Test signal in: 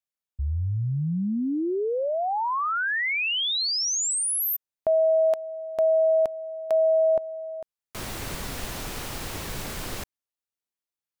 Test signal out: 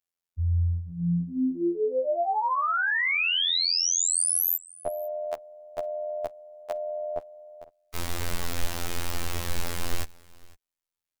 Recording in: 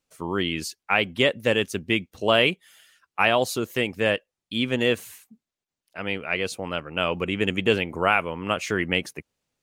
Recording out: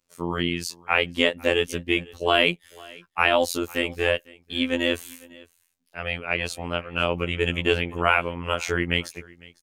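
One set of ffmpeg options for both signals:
-af "afftfilt=real='hypot(re,im)*cos(PI*b)':imag='0':win_size=2048:overlap=0.75,aecho=1:1:503:0.0668,asubboost=boost=4:cutoff=65,volume=1.58"

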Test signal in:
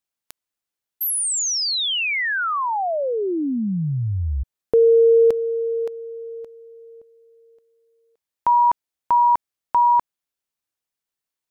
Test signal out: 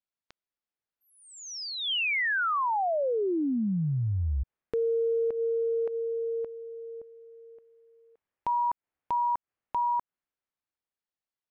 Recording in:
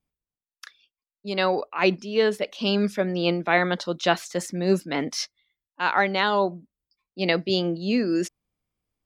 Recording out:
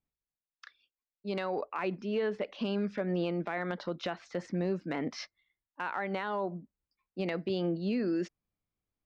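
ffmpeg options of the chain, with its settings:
-filter_complex "[0:a]acrossover=split=2600[s0][s1];[s0]dynaudnorm=f=150:g=21:m=4.47[s2];[s1]lowpass=f=4700:w=0.5412,lowpass=f=4700:w=1.3066[s3];[s2][s3]amix=inputs=2:normalize=0,acompressor=threshold=0.112:ratio=8:attack=0.35:release=158:knee=1:detection=rms,volume=0.473"

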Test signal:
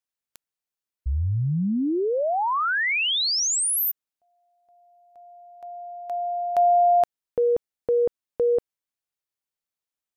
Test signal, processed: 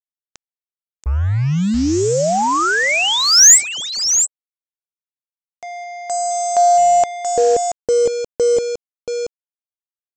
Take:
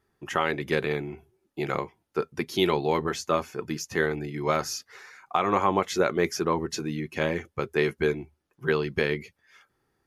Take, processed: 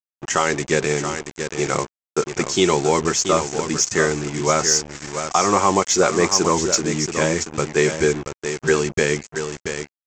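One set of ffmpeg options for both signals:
-af "aecho=1:1:680:0.355,acontrast=77,aresample=16000,acrusher=bits=4:mix=0:aa=0.5,aresample=44100,aexciter=amount=4.1:drive=7.1:freq=5600"

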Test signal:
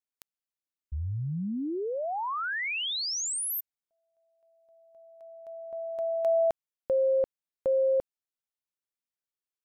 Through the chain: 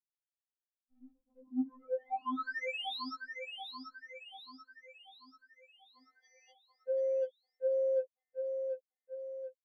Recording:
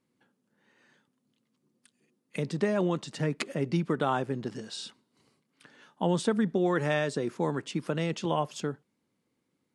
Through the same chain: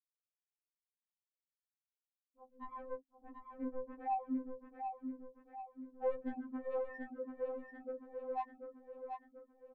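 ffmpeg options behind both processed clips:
-filter_complex "[0:a]afftfilt=real='re*gte(hypot(re,im),0.251)':imag='im*gte(hypot(re,im),0.251)':win_size=1024:overlap=0.75,lowshelf=f=98:g=-3,bandreject=f=60:t=h:w=6,bandreject=f=120:t=h:w=6,bandreject=f=180:t=h:w=6,bandreject=f=240:t=h:w=6,acrossover=split=340|620|5100[s0][s1][s2][s3];[s0]asplit=2[s4][s5];[s5]adelay=35,volume=0.708[s6];[s4][s6]amix=inputs=2:normalize=0[s7];[s3]acompressor=threshold=0.00112:ratio=4:attack=0.49:release=571:knee=1:detection=rms[s8];[s7][s1][s2][s8]amix=inputs=4:normalize=0,asoftclip=type=tanh:threshold=0.0422,aecho=1:1:737|1474|2211|2948|3685|4422:0.501|0.246|0.12|0.059|0.0289|0.0142,afftfilt=real='re*3.46*eq(mod(b,12),0)':imag='im*3.46*eq(mod(b,12),0)':win_size=2048:overlap=0.75,volume=0.794"

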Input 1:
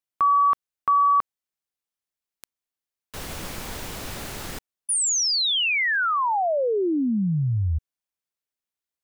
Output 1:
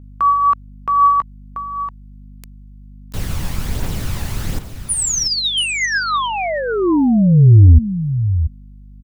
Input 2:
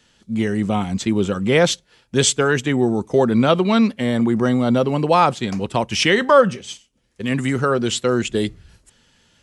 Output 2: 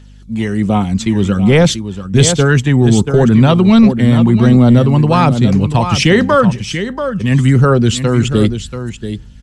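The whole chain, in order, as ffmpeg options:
-filter_complex "[0:a]acrossover=split=190[s0][s1];[s0]dynaudnorm=f=500:g=5:m=3.55[s2];[s2][s1]amix=inputs=2:normalize=0,aeval=exprs='val(0)+0.00631*(sin(2*PI*50*n/s)+sin(2*PI*2*50*n/s)/2+sin(2*PI*3*50*n/s)/3+sin(2*PI*4*50*n/s)/4+sin(2*PI*5*50*n/s)/5)':c=same,aecho=1:1:685:0.316,aphaser=in_gain=1:out_gain=1:delay=1.2:decay=0.35:speed=1.3:type=triangular,apsyclip=1.78,volume=0.794"

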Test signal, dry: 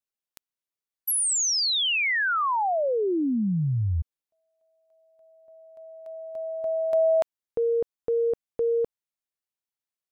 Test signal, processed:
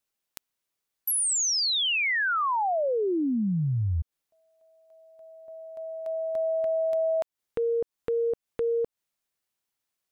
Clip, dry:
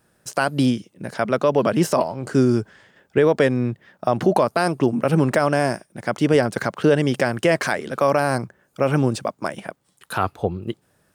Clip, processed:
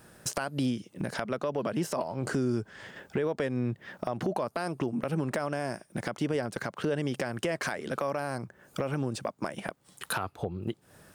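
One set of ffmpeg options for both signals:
-af "acompressor=threshold=0.0251:ratio=8:attack=0.7:release=449:knee=1:detection=peak,volume=2.51"

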